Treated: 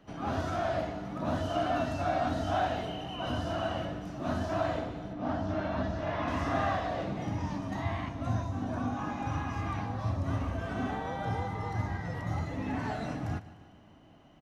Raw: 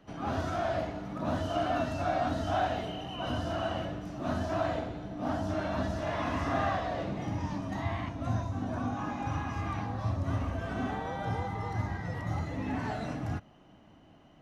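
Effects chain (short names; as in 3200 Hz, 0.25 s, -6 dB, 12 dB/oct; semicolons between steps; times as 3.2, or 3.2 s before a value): 5.13–6.28 air absorption 120 m; on a send: feedback echo 0.15 s, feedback 54%, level -17 dB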